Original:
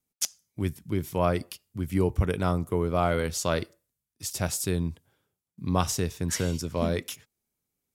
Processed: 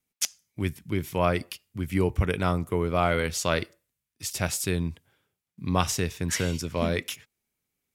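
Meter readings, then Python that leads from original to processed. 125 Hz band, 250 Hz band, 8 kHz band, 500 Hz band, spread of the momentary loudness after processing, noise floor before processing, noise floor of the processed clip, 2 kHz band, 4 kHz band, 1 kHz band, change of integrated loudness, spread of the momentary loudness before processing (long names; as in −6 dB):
0.0 dB, 0.0 dB, +0.5 dB, +0.5 dB, 10 LU, below −85 dBFS, below −85 dBFS, +5.0 dB, +3.0 dB, +1.5 dB, +0.5 dB, 10 LU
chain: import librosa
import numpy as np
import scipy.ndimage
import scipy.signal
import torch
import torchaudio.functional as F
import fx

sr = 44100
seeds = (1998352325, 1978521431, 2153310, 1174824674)

y = fx.peak_eq(x, sr, hz=2300.0, db=7.0, octaves=1.3)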